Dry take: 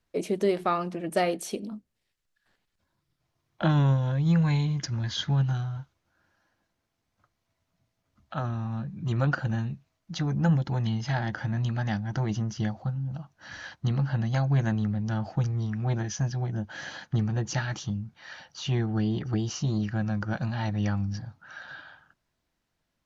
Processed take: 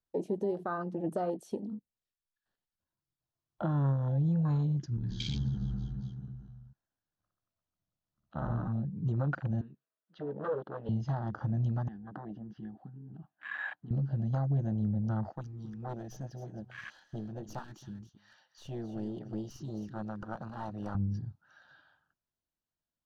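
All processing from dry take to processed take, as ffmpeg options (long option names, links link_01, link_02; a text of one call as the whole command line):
ffmpeg -i in.wav -filter_complex "[0:a]asettb=1/sr,asplit=3[link_01][link_02][link_03];[link_01]atrim=end=4.974[link_04];[link_02]atrim=start=4.97:end=8.68,asetpts=PTS-STARTPTS,afade=type=in:duration=0.004:curve=qsin,afade=type=out:start_time=3.706:duration=0.004:curve=qsin,acompressor=threshold=-27dB:ratio=6:attack=3.2:release=140:knee=1:detection=peak,tremolo=f=73:d=0.889,aecho=1:1:60|135|228.8|345.9|492.4|675.5|904.4:0.794|0.631|0.501|0.398|0.316|0.251|0.2,atrim=end_sample=163611[link_05];[link_03]atrim=start=8.676[link_06];[link_04][link_05]acrossfade=duration=0.004:curve1=hsin:curve2=qsin[link_07];[link_07][link_06]acrossfade=duration=0.004:curve1=qsin:curve2=hsin,asettb=1/sr,asplit=3[link_08][link_09][link_10];[link_08]atrim=end=9.614[link_11];[link_09]atrim=start=9.61:end=10.89,asetpts=PTS-STARTPTS,afade=type=in:duration=0.004:curve=qsin,afade=type=out:start_time=1.276:duration=0.004:curve=qsin,aeval=exprs='0.0668*(abs(mod(val(0)/0.0668+3,4)-2)-1)':channel_layout=same,highpass=410,equalizer=frequency=440:width_type=q:width=4:gain=6,equalizer=frequency=830:width_type=q:width=4:gain=-8,equalizer=frequency=1500:width_type=q:width=4:gain=4,equalizer=frequency=2400:width_type=q:width=4:gain=-4,lowpass=frequency=3300:width=0.5412,lowpass=frequency=3300:width=1.3066[link_12];[link_10]atrim=start=10.886[link_13];[link_11][link_12]acrossfade=duration=0.004:curve1=hsin:curve2=qsin[link_14];[link_14][link_13]acrossfade=duration=0.004:curve1=qsin:curve2=hsin,asettb=1/sr,asplit=3[link_15][link_16][link_17];[link_15]atrim=end=11.884[link_18];[link_16]atrim=start=11.88:end=13.91,asetpts=PTS-STARTPTS,afade=type=in:duration=0.004:curve=qsin,afade=type=out:start_time=2.026:duration=0.004:curve=qsin,acompressor=threshold=-37dB:ratio=5:attack=3.2:release=140:knee=1:detection=peak,highpass=frequency=140:width=0.5412,highpass=frequency=140:width=1.3066,equalizer=frequency=140:width_type=q:width=4:gain=-7,equalizer=frequency=290:width_type=q:width=4:gain=6,equalizer=frequency=430:width_type=q:width=4:gain=-8,equalizer=frequency=750:width_type=q:width=4:gain=8,equalizer=frequency=1700:width_type=q:width=4:gain=9,lowpass=frequency=3500:width=0.5412,lowpass=frequency=3500:width=1.3066[link_19];[link_17]atrim=start=13.906[link_20];[link_18][link_19]acrossfade=duration=0.004:curve1=hsin:curve2=qsin[link_21];[link_21][link_20]acrossfade=duration=0.004:curve1=qsin:curve2=hsin,asettb=1/sr,asplit=3[link_22][link_23][link_24];[link_22]atrim=end=15.334[link_25];[link_23]atrim=start=15.33:end=20.95,asetpts=PTS-STARTPTS,afade=type=in:duration=0.004:curve=qsin,afade=type=out:start_time=5.616:duration=0.004:curve=qsin,highpass=frequency=650:poles=1,aeval=exprs='clip(val(0),-1,0.0119)':channel_layout=same,aecho=1:1:270:0.266,atrim=end_sample=247842[link_26];[link_24]atrim=start=20.946[link_27];[link_25][link_26]acrossfade=duration=0.004:curve1=hsin:curve2=qsin[link_28];[link_28][link_27]acrossfade=duration=0.004:curve1=qsin:curve2=hsin,equalizer=frequency=2200:width=3.8:gain=-9,alimiter=limit=-23dB:level=0:latency=1:release=391,afwtdn=0.0126" out.wav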